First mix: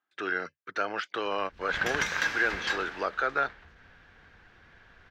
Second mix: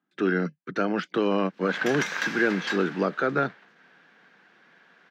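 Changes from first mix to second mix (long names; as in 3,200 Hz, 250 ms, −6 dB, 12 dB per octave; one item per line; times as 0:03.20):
speech: remove high-pass filter 700 Hz 12 dB per octave
master: add Butterworth high-pass 160 Hz 48 dB per octave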